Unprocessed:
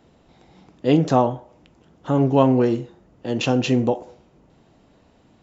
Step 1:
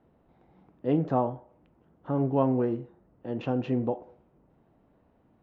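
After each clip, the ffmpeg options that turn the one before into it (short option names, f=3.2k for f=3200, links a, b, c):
-af "lowpass=1.6k,volume=-8.5dB"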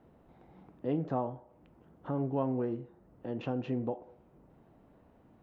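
-af "acompressor=threshold=-49dB:ratio=1.5,volume=3dB"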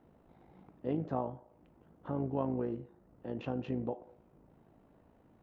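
-af "tremolo=f=54:d=0.519"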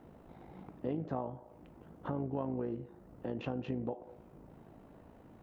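-af "acompressor=threshold=-45dB:ratio=2.5,volume=7.5dB"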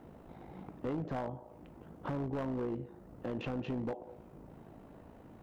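-af "volume=34dB,asoftclip=hard,volume=-34dB,volume=2.5dB"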